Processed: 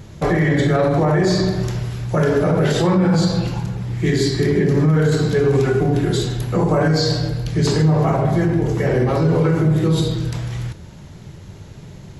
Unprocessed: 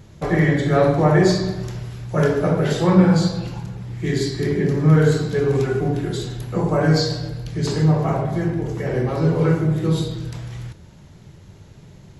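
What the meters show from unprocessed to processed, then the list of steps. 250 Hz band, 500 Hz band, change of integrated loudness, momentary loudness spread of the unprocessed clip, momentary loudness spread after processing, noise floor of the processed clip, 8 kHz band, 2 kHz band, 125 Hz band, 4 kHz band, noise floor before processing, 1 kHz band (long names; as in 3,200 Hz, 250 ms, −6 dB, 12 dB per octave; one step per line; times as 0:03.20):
+1.5 dB, +2.0 dB, +1.5 dB, 14 LU, 8 LU, −39 dBFS, +3.5 dB, +2.0 dB, +2.0 dB, +3.5 dB, −45 dBFS, +2.0 dB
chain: brickwall limiter −15 dBFS, peak gain reduction 12 dB
level +6.5 dB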